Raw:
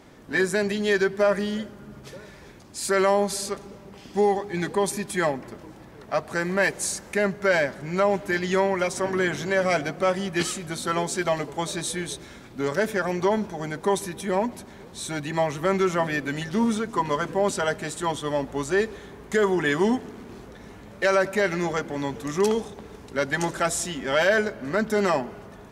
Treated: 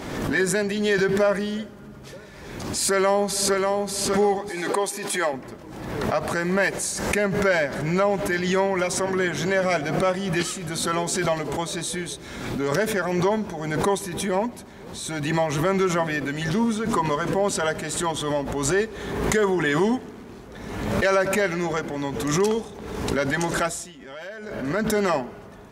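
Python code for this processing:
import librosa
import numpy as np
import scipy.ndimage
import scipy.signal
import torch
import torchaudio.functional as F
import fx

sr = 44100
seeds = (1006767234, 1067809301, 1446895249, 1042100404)

y = fx.echo_throw(x, sr, start_s=2.88, length_s=0.92, ms=590, feedback_pct=20, wet_db=-3.0)
y = fx.highpass(y, sr, hz=350.0, slope=12, at=(4.49, 5.33))
y = fx.edit(y, sr, fx.fade_down_up(start_s=23.6, length_s=1.25, db=-17.5, fade_s=0.35), tone=tone)
y = fx.pre_swell(y, sr, db_per_s=41.0)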